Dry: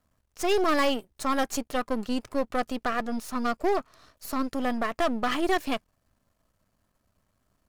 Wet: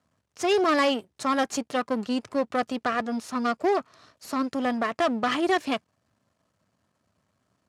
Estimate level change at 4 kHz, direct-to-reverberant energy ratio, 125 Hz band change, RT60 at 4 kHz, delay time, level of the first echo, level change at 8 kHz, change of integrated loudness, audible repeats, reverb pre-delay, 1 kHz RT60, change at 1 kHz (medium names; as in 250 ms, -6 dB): +2.0 dB, no reverb, 0.0 dB, no reverb, no echo, no echo, 0.0 dB, +2.0 dB, no echo, no reverb, no reverb, +2.0 dB